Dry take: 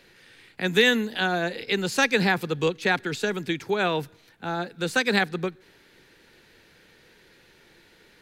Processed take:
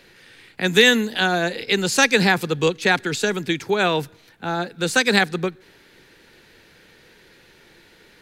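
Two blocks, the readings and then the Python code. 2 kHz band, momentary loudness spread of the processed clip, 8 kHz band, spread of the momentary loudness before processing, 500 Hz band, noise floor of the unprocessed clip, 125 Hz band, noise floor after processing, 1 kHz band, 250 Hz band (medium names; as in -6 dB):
+5.0 dB, 11 LU, +10.0 dB, 11 LU, +4.5 dB, -57 dBFS, +4.5 dB, -53 dBFS, +4.5 dB, +4.5 dB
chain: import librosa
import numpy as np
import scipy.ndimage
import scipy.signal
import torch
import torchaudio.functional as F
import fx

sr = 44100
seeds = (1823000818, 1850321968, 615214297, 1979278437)

y = fx.dynamic_eq(x, sr, hz=7600.0, q=0.75, threshold_db=-44.0, ratio=4.0, max_db=6)
y = y * 10.0 ** (4.5 / 20.0)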